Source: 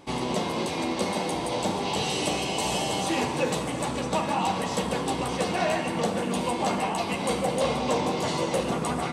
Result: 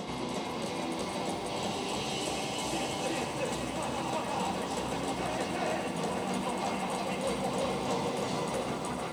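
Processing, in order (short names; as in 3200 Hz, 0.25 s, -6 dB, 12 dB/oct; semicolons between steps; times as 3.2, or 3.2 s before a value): reverse echo 0.372 s -3.5 dB; lo-fi delay 0.455 s, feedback 80%, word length 8-bit, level -10 dB; gain -8.5 dB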